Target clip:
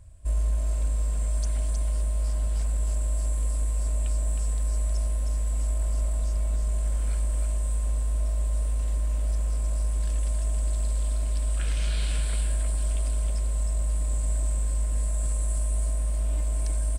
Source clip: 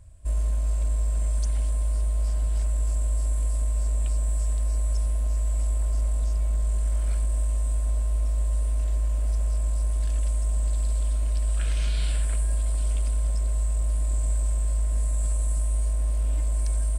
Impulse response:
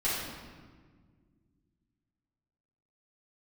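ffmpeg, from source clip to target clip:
-af "aecho=1:1:314:0.562"

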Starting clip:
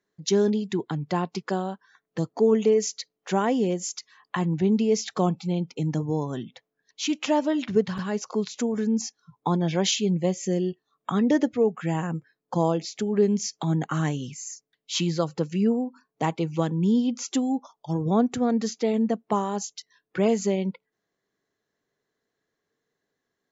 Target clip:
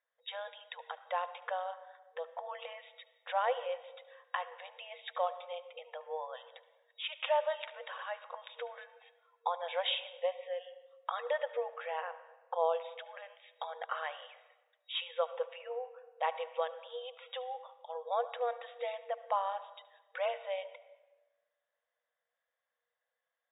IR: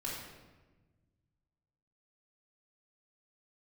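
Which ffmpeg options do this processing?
-filter_complex "[0:a]asplit=2[s0][s1];[1:a]atrim=start_sample=2205,highshelf=f=5300:g=-5,adelay=72[s2];[s1][s2]afir=irnorm=-1:irlink=0,volume=0.188[s3];[s0][s3]amix=inputs=2:normalize=0,afftfilt=real='re*between(b*sr/4096,470,3800)':imag='im*between(b*sr/4096,470,3800)':win_size=4096:overlap=0.75,volume=0.562"

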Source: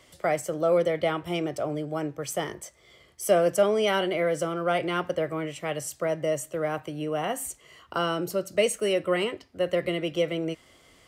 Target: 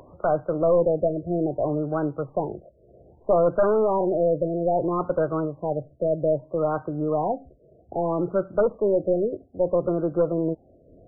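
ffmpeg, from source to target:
-af "aeval=exprs='0.355*(cos(1*acos(clip(val(0)/0.355,-1,1)))-cos(1*PI/2))+0.0562*(cos(4*acos(clip(val(0)/0.355,-1,1)))-cos(4*PI/2))+0.1*(cos(5*acos(clip(val(0)/0.355,-1,1)))-cos(5*PI/2))':c=same,acompressor=mode=upward:threshold=0.0141:ratio=2.5,afftfilt=real='re*lt(b*sr/1024,680*pow(1600/680,0.5+0.5*sin(2*PI*0.62*pts/sr)))':imag='im*lt(b*sr/1024,680*pow(1600/680,0.5+0.5*sin(2*PI*0.62*pts/sr)))':win_size=1024:overlap=0.75,volume=0.794"

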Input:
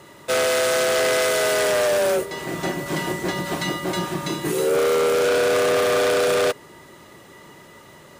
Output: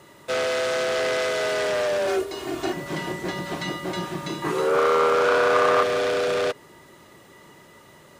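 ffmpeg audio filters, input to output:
-filter_complex "[0:a]acrossover=split=6400[s0][s1];[s1]acompressor=threshold=0.00501:ratio=4:attack=1:release=60[s2];[s0][s2]amix=inputs=2:normalize=0,asettb=1/sr,asplit=3[s3][s4][s5];[s3]atrim=end=2.074[s6];[s4]atrim=start=2.07:end=2.73,asetpts=PTS-STARTPTS,afade=t=in:d=0.004:c=qsin,afade=t=out:st=0.656:d=0.004:c=qsin,aecho=1:1:2.8:0.92,atrim=end_sample=29106[s7];[s5]atrim=start=2.726[s8];[s6][s7]acrossfade=d=0.004:c1=hsin:c2=qsin[s9];[s9][s8]acrossfade=d=0.004:c1=qsin:c2=hsin,asettb=1/sr,asplit=3[s10][s11][s12];[s10]atrim=end=4.424[s13];[s11]atrim=start=4.42:end=5.83,asetpts=PTS-STARTPTS,afade=t=in:d=0.004:c=qsin,afade=t=out:st=1.406:d=0.004:c=qsin,equalizer=f=1100:w=1.3:g=12.5[s14];[s12]atrim=start=5.826[s15];[s13][s14]acrossfade=d=0.004:c1=hsin:c2=qsin[s16];[s16][s15]acrossfade=d=0.004:c1=qsin:c2=hsin,volume=0.631"

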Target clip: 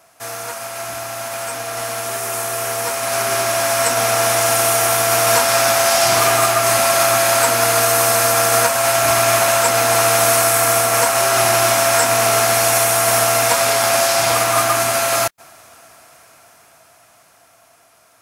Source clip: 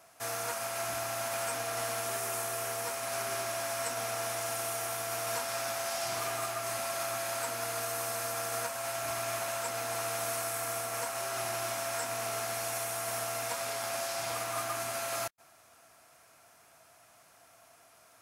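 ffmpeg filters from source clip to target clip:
-af "aeval=exprs='0.0944*(cos(1*acos(clip(val(0)/0.0944,-1,1)))-cos(1*PI/2))+0.00299*(cos(5*acos(clip(val(0)/0.0944,-1,1)))-cos(5*PI/2))+0.00211*(cos(7*acos(clip(val(0)/0.0944,-1,1)))-cos(7*PI/2))':c=same,dynaudnorm=f=730:g=9:m=4.47,volume=2.24"

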